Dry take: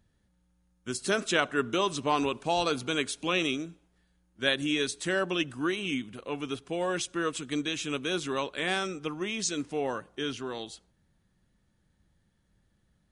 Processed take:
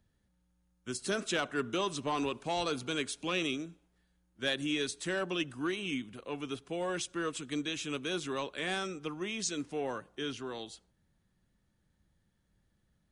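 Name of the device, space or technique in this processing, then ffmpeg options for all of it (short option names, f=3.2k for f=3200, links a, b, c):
one-band saturation: -filter_complex "[0:a]acrossover=split=340|3100[a][b][c];[b]asoftclip=type=tanh:threshold=-23dB[d];[a][d][c]amix=inputs=3:normalize=0,volume=-4dB"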